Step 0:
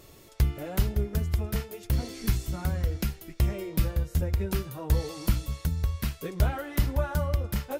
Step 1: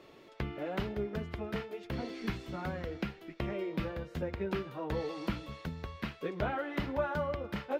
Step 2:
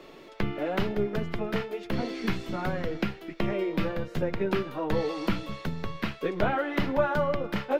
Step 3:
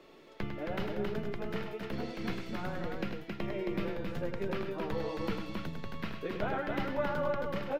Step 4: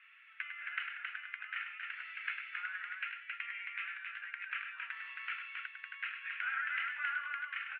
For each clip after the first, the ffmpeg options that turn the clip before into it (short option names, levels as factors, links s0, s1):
-filter_complex "[0:a]acrossover=split=180 3900:gain=0.112 1 0.0631[s0][s1][s2];[s0][s1][s2]amix=inputs=3:normalize=0,acrossover=split=3700[s3][s4];[s4]alimiter=level_in=10:limit=0.0631:level=0:latency=1:release=282,volume=0.1[s5];[s3][s5]amix=inputs=2:normalize=0"
-filter_complex "[0:a]lowshelf=f=78:g=7.5,acrossover=split=140|4700[s0][s1][s2];[s0]aeval=exprs='abs(val(0))':c=same[s3];[s3][s1][s2]amix=inputs=3:normalize=0,volume=2.37"
-af "aecho=1:1:101|270:0.447|0.631,volume=0.376"
-af "asuperpass=centerf=2000:order=8:qfactor=1.4,volume=2.24"